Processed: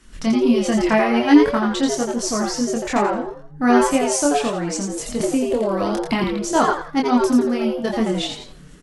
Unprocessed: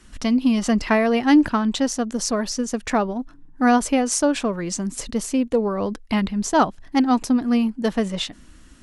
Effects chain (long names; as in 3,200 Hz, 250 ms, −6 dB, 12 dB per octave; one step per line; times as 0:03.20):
echo with shifted repeats 85 ms, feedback 31%, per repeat +140 Hz, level −4 dB
multi-voice chorus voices 4, 0.43 Hz, delay 25 ms, depth 4.1 ms
0:05.20–0:06.24: multiband upward and downward compressor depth 100%
level +3 dB